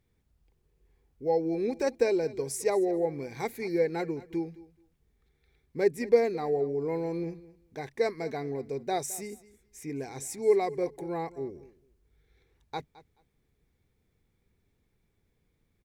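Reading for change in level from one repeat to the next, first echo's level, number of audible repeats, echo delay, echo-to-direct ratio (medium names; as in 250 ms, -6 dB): -15.5 dB, -19.0 dB, 2, 215 ms, -19.0 dB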